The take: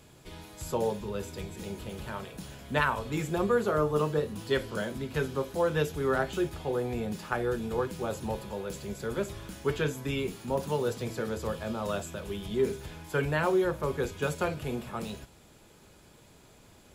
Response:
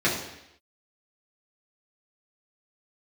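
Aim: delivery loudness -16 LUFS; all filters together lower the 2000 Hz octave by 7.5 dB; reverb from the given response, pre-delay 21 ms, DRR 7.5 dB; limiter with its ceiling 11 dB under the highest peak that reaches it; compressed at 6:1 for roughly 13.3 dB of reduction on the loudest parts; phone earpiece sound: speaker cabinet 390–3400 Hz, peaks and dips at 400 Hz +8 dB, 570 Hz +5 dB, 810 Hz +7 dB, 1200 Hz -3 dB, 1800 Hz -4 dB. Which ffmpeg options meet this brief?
-filter_complex "[0:a]equalizer=f=2k:t=o:g=-8,acompressor=threshold=-37dB:ratio=6,alimiter=level_in=9.5dB:limit=-24dB:level=0:latency=1,volume=-9.5dB,asplit=2[a][b];[1:a]atrim=start_sample=2205,adelay=21[c];[b][c]afir=irnorm=-1:irlink=0,volume=-22.5dB[d];[a][d]amix=inputs=2:normalize=0,highpass=390,equalizer=f=400:t=q:w=4:g=8,equalizer=f=570:t=q:w=4:g=5,equalizer=f=810:t=q:w=4:g=7,equalizer=f=1.2k:t=q:w=4:g=-3,equalizer=f=1.8k:t=q:w=4:g=-4,lowpass=f=3.4k:w=0.5412,lowpass=f=3.4k:w=1.3066,volume=25.5dB"

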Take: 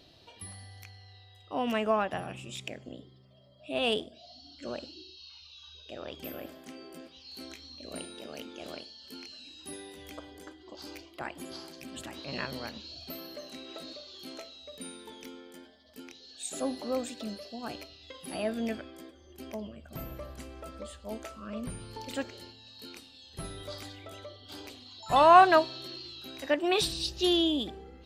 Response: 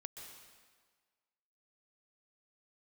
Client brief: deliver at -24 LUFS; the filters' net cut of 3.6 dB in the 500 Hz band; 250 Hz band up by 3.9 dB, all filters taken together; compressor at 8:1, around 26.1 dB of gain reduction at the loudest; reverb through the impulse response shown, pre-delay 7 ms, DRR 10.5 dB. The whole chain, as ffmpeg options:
-filter_complex "[0:a]equalizer=f=250:t=o:g=8,equalizer=f=500:t=o:g=-8,acompressor=threshold=-43dB:ratio=8,asplit=2[a][b];[1:a]atrim=start_sample=2205,adelay=7[c];[b][c]afir=irnorm=-1:irlink=0,volume=-6.5dB[d];[a][d]amix=inputs=2:normalize=0,volume=23dB"

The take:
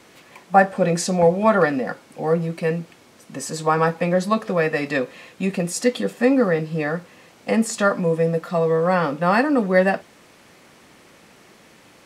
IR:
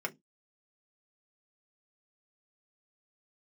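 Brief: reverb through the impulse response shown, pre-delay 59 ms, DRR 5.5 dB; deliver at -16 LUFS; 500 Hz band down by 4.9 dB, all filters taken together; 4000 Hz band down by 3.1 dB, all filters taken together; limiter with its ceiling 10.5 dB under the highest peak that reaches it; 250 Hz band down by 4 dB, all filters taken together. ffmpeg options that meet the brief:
-filter_complex "[0:a]equalizer=f=250:t=o:g=-4.5,equalizer=f=500:t=o:g=-4.5,equalizer=f=4k:t=o:g=-4,alimiter=limit=-14.5dB:level=0:latency=1,asplit=2[a][b];[1:a]atrim=start_sample=2205,adelay=59[c];[b][c]afir=irnorm=-1:irlink=0,volume=-9.5dB[d];[a][d]amix=inputs=2:normalize=0,volume=9dB"

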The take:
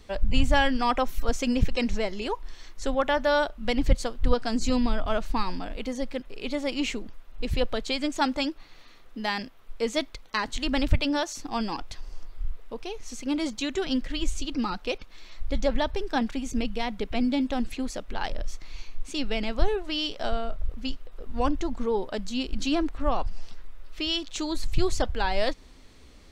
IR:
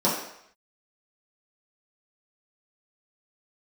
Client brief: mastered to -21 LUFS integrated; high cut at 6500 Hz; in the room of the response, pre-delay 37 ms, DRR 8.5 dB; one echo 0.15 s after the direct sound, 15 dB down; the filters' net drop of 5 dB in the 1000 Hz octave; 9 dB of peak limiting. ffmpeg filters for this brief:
-filter_complex "[0:a]lowpass=6.5k,equalizer=f=1k:t=o:g=-6.5,alimiter=limit=-16.5dB:level=0:latency=1,aecho=1:1:150:0.178,asplit=2[a][b];[1:a]atrim=start_sample=2205,adelay=37[c];[b][c]afir=irnorm=-1:irlink=0,volume=-23.5dB[d];[a][d]amix=inputs=2:normalize=0,volume=8.5dB"

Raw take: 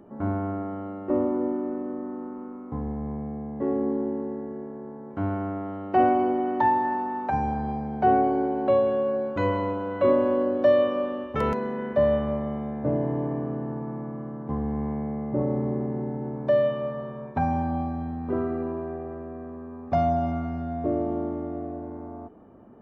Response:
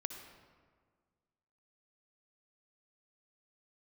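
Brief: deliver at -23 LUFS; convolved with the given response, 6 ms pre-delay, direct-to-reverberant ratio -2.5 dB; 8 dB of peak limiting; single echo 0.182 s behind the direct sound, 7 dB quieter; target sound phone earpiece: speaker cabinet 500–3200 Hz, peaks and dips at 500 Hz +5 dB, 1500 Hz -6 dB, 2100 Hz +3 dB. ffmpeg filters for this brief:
-filter_complex "[0:a]alimiter=limit=-17dB:level=0:latency=1,aecho=1:1:182:0.447,asplit=2[a][b];[1:a]atrim=start_sample=2205,adelay=6[c];[b][c]afir=irnorm=-1:irlink=0,volume=3.5dB[d];[a][d]amix=inputs=2:normalize=0,highpass=500,equalizer=f=500:t=q:w=4:g=5,equalizer=f=1.5k:t=q:w=4:g=-6,equalizer=f=2.1k:t=q:w=4:g=3,lowpass=f=3.2k:w=0.5412,lowpass=f=3.2k:w=1.3066,volume=4.5dB"

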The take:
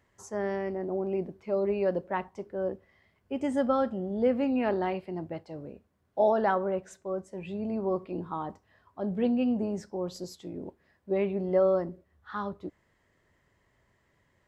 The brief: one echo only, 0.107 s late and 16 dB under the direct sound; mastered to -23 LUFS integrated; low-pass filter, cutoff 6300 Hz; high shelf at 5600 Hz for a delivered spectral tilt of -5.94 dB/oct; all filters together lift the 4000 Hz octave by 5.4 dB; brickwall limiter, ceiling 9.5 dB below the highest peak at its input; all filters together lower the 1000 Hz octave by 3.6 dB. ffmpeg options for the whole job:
-af "lowpass=6.3k,equalizer=f=1k:t=o:g=-5.5,equalizer=f=4k:t=o:g=7,highshelf=f=5.6k:g=4.5,alimiter=level_in=1dB:limit=-24dB:level=0:latency=1,volume=-1dB,aecho=1:1:107:0.158,volume=12dB"

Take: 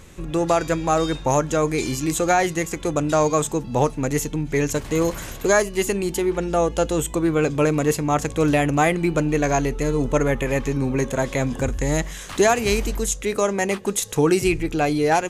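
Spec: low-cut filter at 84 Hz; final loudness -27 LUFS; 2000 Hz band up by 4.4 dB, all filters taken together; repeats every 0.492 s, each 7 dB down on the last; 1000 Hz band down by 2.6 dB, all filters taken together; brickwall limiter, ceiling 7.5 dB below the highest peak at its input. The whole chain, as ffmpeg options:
-af "highpass=84,equalizer=f=1k:t=o:g=-5.5,equalizer=f=2k:t=o:g=7,alimiter=limit=-12dB:level=0:latency=1,aecho=1:1:492|984|1476|1968|2460:0.447|0.201|0.0905|0.0407|0.0183,volume=-4.5dB"

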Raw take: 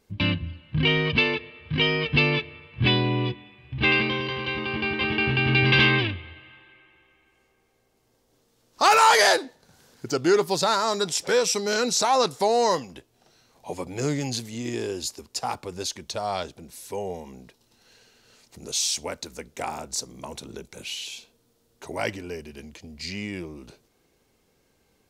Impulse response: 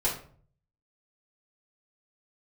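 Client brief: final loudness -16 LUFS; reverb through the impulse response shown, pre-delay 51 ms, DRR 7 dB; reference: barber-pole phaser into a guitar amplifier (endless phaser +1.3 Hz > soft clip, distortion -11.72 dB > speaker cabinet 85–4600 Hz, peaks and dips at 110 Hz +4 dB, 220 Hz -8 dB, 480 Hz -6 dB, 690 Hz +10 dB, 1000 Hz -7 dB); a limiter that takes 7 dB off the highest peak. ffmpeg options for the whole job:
-filter_complex "[0:a]alimiter=limit=-13.5dB:level=0:latency=1,asplit=2[a][b];[1:a]atrim=start_sample=2205,adelay=51[c];[b][c]afir=irnorm=-1:irlink=0,volume=-16dB[d];[a][d]amix=inputs=2:normalize=0,asplit=2[e][f];[f]afreqshift=1.3[g];[e][g]amix=inputs=2:normalize=1,asoftclip=threshold=-23.5dB,highpass=85,equalizer=f=110:t=q:w=4:g=4,equalizer=f=220:t=q:w=4:g=-8,equalizer=f=480:t=q:w=4:g=-6,equalizer=f=690:t=q:w=4:g=10,equalizer=f=1k:t=q:w=4:g=-7,lowpass=f=4.6k:w=0.5412,lowpass=f=4.6k:w=1.3066,volume=15.5dB"

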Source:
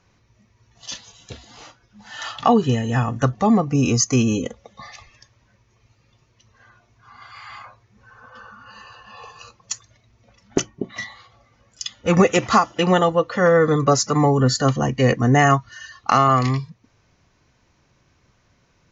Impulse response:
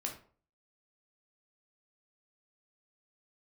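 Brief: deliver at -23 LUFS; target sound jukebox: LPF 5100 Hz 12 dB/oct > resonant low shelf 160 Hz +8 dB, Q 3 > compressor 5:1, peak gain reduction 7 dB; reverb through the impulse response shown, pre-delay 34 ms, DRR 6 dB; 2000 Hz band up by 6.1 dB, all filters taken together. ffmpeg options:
-filter_complex "[0:a]equalizer=f=2k:t=o:g=7.5,asplit=2[a][b];[1:a]atrim=start_sample=2205,adelay=34[c];[b][c]afir=irnorm=-1:irlink=0,volume=-6.5dB[d];[a][d]amix=inputs=2:normalize=0,lowpass=5.1k,lowshelf=f=160:t=q:w=3:g=8,acompressor=threshold=-9dB:ratio=5,volume=-7.5dB"

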